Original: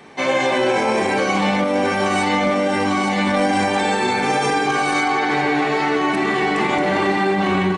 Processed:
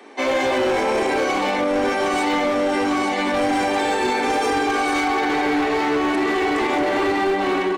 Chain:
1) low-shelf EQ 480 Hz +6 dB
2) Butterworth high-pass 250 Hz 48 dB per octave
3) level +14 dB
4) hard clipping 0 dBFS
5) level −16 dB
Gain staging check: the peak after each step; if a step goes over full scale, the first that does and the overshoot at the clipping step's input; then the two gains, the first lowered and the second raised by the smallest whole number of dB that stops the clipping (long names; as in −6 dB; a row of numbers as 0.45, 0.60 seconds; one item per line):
−4.5, −5.0, +9.0, 0.0, −16.0 dBFS
step 3, 9.0 dB
step 3 +5 dB, step 5 −7 dB